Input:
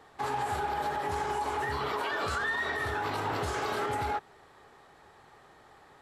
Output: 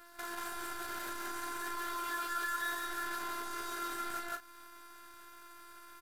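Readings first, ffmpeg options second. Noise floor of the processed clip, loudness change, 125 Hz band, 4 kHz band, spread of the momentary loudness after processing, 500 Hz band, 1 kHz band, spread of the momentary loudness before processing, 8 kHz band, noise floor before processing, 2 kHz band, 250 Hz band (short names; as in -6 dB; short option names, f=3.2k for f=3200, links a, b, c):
-55 dBFS, -6.5 dB, under -20 dB, -4.5 dB, 18 LU, -14.0 dB, -8.0 dB, 3 LU, +2.5 dB, -58 dBFS, -6.0 dB, -6.0 dB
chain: -filter_complex "[0:a]afftfilt=real='hypot(re,im)*cos(PI*b)':imag='0':win_size=512:overlap=0.75,acrusher=bits=8:dc=4:mix=0:aa=0.000001,aresample=32000,aresample=44100,asplit=2[a][b];[b]adelay=33,volume=-9.5dB[c];[a][c]amix=inputs=2:normalize=0,asplit=2[d][e];[e]aecho=0:1:49.56|180.8:0.282|0.891[f];[d][f]amix=inputs=2:normalize=0,acompressor=threshold=-44dB:ratio=2,aemphasis=mode=production:type=50kf,alimiter=level_in=7dB:limit=-24dB:level=0:latency=1:release=56,volume=-7dB,equalizer=f=1.5k:w=3.5:g=14"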